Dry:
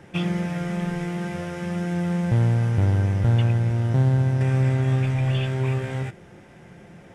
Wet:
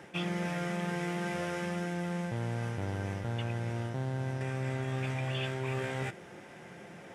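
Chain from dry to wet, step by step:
high-pass filter 360 Hz 6 dB per octave
reversed playback
downward compressor, threshold −32 dBFS, peak gain reduction 9.5 dB
reversed playback
level +1.5 dB

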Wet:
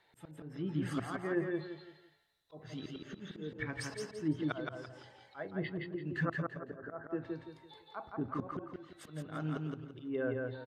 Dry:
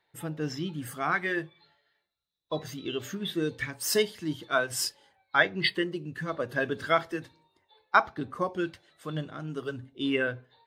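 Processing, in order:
treble cut that deepens with the level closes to 890 Hz, closed at −27 dBFS
volume swells 649 ms
0:06.25–0:07.04: Chebyshev low-pass with heavy ripple 1,900 Hz, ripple 3 dB
on a send: repeating echo 169 ms, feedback 33%, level −3 dB
on the sum: level +4.5 dB

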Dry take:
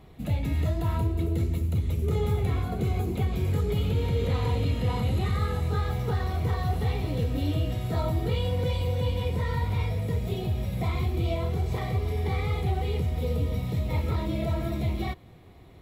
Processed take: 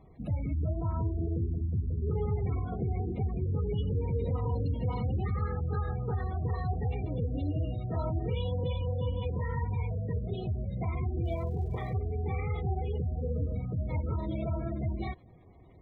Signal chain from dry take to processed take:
gate on every frequency bin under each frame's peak −25 dB strong
0:11.24–0:11.92: surface crackle 190 per second −49 dBFS
level −4.5 dB

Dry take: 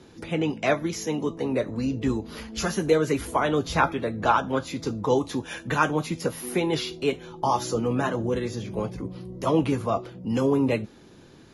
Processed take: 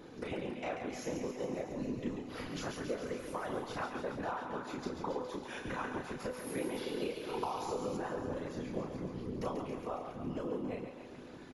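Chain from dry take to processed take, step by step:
downward compressor 12 to 1, threshold −35 dBFS, peak gain reduction 20.5 dB
high-shelf EQ 2,500 Hz −10.5 dB
double-tracking delay 33 ms −4 dB
feedback echo with a high-pass in the loop 138 ms, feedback 75%, high-pass 420 Hz, level −6.5 dB
random phases in short frames
low-shelf EQ 180 Hz −8 dB
tuned comb filter 250 Hz, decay 0.89 s, mix 70%
0:06.57–0:07.97: multiband upward and downward compressor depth 100%
level +10 dB

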